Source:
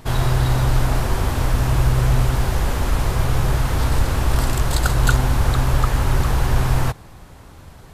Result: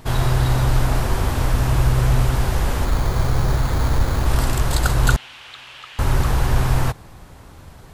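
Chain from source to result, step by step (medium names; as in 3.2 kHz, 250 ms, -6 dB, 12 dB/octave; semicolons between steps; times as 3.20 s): 2.85–4.26 s: careless resampling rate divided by 8×, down filtered, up hold; 5.16–5.99 s: band-pass filter 2.9 kHz, Q 3.2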